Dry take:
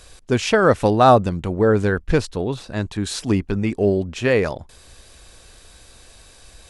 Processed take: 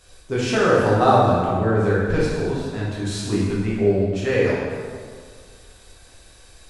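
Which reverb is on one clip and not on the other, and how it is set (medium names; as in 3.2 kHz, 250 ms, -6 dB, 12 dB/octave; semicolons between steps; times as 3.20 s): plate-style reverb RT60 1.9 s, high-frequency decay 0.7×, DRR -7.5 dB; trim -9.5 dB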